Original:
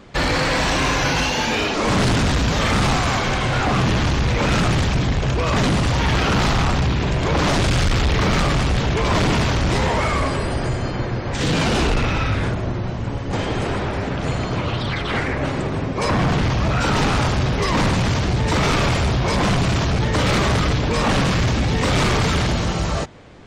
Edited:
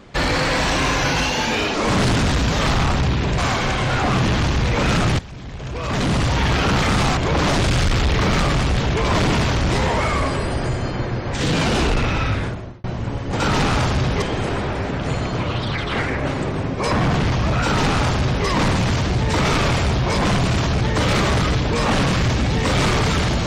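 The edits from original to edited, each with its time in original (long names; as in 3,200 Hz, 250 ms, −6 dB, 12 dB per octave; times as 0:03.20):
0:02.66–0:03.01: swap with 0:06.45–0:07.17
0:04.82–0:05.79: fade in quadratic, from −17.5 dB
0:12.31–0:12.84: fade out
0:16.82–0:17.64: duplicate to 0:13.40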